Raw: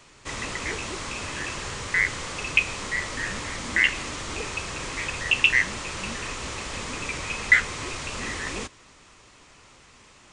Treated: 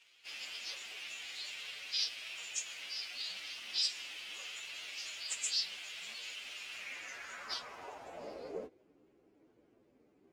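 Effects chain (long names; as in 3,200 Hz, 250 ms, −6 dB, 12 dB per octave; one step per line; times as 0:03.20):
partials spread apart or drawn together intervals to 128%
formants moved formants +6 semitones
band-pass filter sweep 3,000 Hz → 330 Hz, 0:06.63–0:08.89
level +1.5 dB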